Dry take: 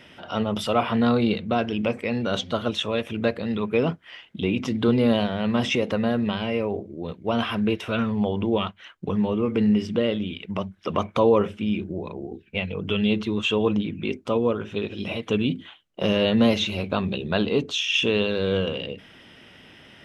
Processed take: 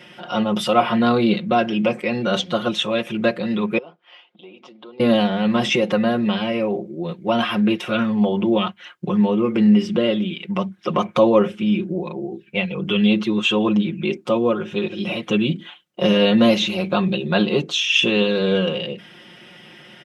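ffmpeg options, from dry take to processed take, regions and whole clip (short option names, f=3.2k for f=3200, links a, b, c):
-filter_complex "[0:a]asettb=1/sr,asplit=3[a][b][c];[a]atrim=end=3.784[d];[b]atrim=start=3.78:end=5,asetpts=PTS-STARTPTS,afade=t=in:d=0.004:c=qsin,afade=t=out:st=1.216:d=0.004:c=qsin,equalizer=f=1.8k:t=o:w=1:g=-13,acompressor=threshold=-39dB:ratio=2.5:attack=3.2:release=140:knee=1:detection=peak,highpass=580,lowpass=2.9k[e];[c]atrim=start=4.996[f];[d][e]acrossfade=d=0.004:c1=hsin:c2=qsin[g];[g][f]acrossfade=d=0.004:c1=qsin:c2=hsin,highpass=110,aecho=1:1:5.6:0.88,volume=2.5dB"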